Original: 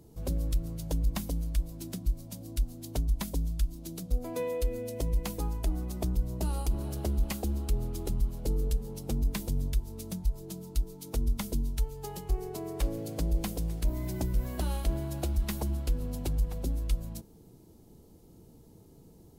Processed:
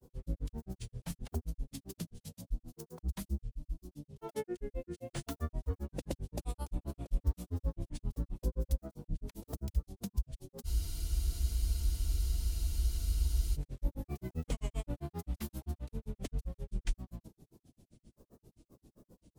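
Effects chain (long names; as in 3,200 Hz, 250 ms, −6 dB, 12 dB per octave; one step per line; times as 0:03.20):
granular cloud, grains 7.6 per second, pitch spread up and down by 7 semitones
frozen spectrum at 0:10.68, 2.87 s
level −1.5 dB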